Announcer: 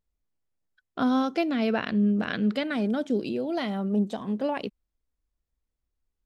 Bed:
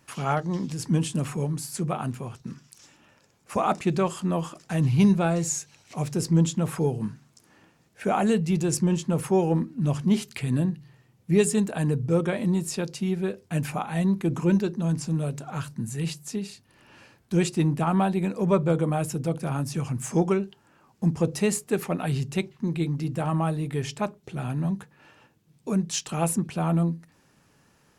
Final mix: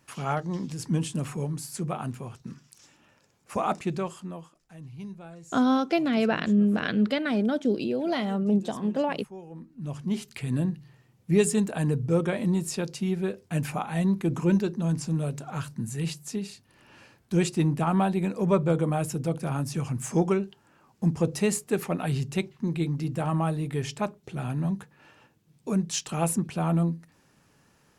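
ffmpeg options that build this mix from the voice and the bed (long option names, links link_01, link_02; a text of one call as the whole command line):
ffmpeg -i stem1.wav -i stem2.wav -filter_complex "[0:a]adelay=4550,volume=1.5dB[link_01];[1:a]volume=17dB,afade=type=out:start_time=3.7:duration=0.82:silence=0.125893,afade=type=in:start_time=9.52:duration=1.28:silence=0.1[link_02];[link_01][link_02]amix=inputs=2:normalize=0" out.wav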